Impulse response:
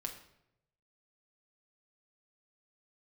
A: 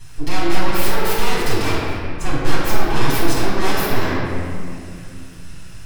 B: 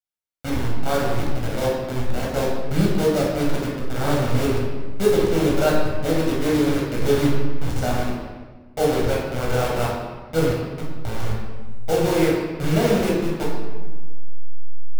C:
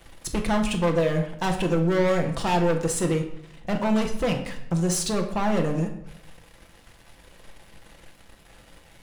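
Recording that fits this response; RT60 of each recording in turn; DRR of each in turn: C; 2.4, 1.4, 0.80 s; -10.0, -4.5, 2.5 dB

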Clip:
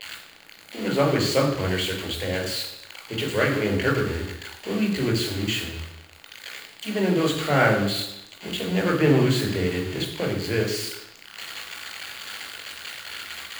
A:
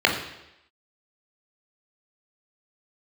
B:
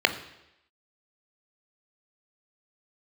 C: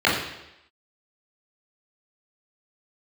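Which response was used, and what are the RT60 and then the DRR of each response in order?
A; 0.85, 0.85, 0.85 s; 0.0, 8.0, -8.0 dB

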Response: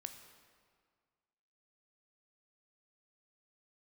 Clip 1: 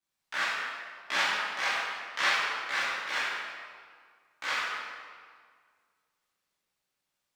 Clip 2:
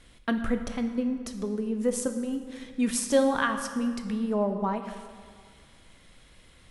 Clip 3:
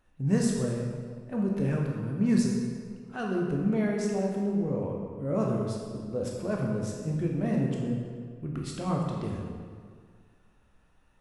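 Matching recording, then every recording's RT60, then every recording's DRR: 2; 1.9, 1.9, 1.9 s; -11.0, 6.5, -1.5 dB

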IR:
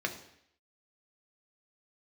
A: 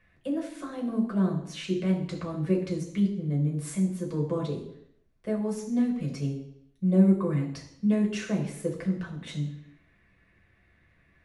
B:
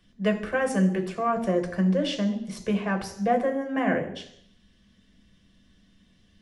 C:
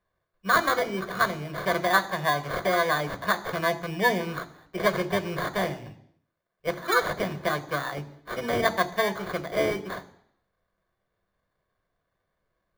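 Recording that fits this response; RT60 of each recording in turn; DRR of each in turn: B; 0.70, 0.70, 0.70 s; -1.5, 3.5, 10.0 dB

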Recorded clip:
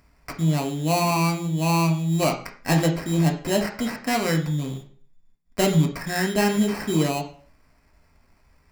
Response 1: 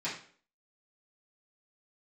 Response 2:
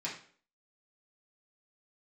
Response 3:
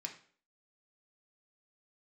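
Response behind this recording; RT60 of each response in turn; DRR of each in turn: 3; 0.50, 0.50, 0.50 s; -10.5, -6.5, 2.0 dB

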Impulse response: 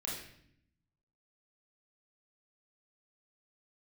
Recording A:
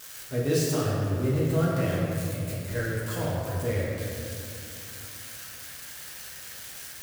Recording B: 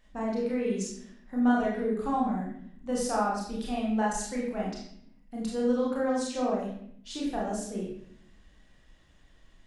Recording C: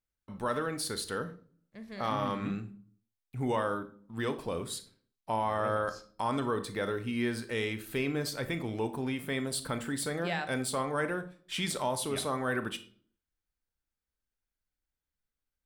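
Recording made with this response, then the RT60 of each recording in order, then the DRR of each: B; 2.6, 0.65, 0.50 s; -6.5, -4.5, 10.0 dB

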